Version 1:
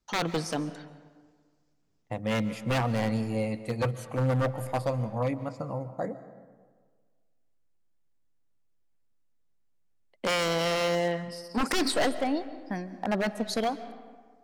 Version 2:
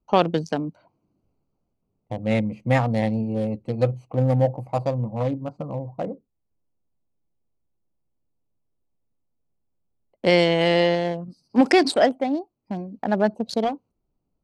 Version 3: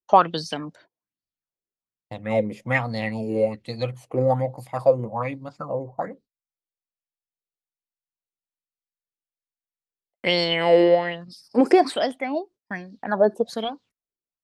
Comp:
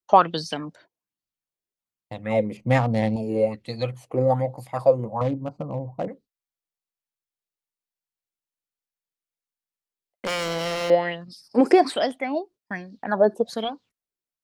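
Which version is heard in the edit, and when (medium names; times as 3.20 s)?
3
2.57–3.16 s: from 2
5.21–6.08 s: from 2
10.25–10.90 s: from 1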